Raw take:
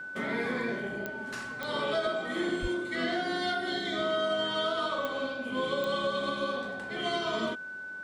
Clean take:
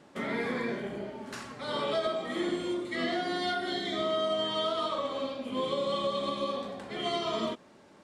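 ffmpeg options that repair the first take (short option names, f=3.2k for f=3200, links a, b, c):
-filter_complex "[0:a]adeclick=t=4,bandreject=f=1.5k:w=30,asplit=3[a][b][c];[a]afade=t=out:st=2.61:d=0.02[d];[b]highpass=f=140:w=0.5412,highpass=f=140:w=1.3066,afade=t=in:st=2.61:d=0.02,afade=t=out:st=2.73:d=0.02[e];[c]afade=t=in:st=2.73:d=0.02[f];[d][e][f]amix=inputs=3:normalize=0"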